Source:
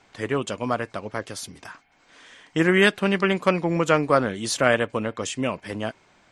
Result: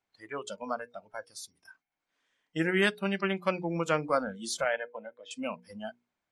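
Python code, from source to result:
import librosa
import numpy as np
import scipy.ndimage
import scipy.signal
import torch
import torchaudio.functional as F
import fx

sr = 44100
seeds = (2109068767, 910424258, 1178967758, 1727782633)

y = fx.cabinet(x, sr, low_hz=290.0, low_slope=12, high_hz=3400.0, hz=(490.0, 1200.0, 2700.0), db=(-4, -7, -5), at=(4.64, 5.31))
y = fx.noise_reduce_blind(y, sr, reduce_db=20)
y = fx.hum_notches(y, sr, base_hz=60, count=8)
y = y * 10.0 ** (-8.0 / 20.0)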